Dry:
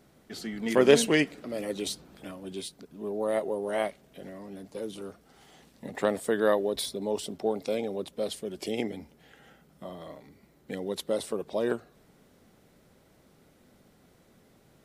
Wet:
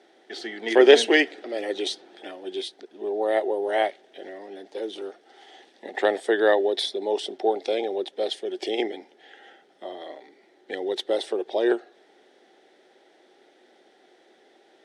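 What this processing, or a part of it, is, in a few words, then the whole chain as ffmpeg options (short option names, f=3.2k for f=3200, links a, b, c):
phone speaker on a table: -af "highpass=f=330:w=0.5412,highpass=f=330:w=1.3066,equalizer=f=360:t=q:w=4:g=9,equalizer=f=780:t=q:w=4:g=9,equalizer=f=1.1k:t=q:w=4:g=-8,equalizer=f=1.8k:t=q:w=4:g=8,equalizer=f=3.4k:t=q:w=4:g=8,equalizer=f=7.3k:t=q:w=4:g=-7,lowpass=f=7.9k:w=0.5412,lowpass=f=7.9k:w=1.3066,volume=2.5dB"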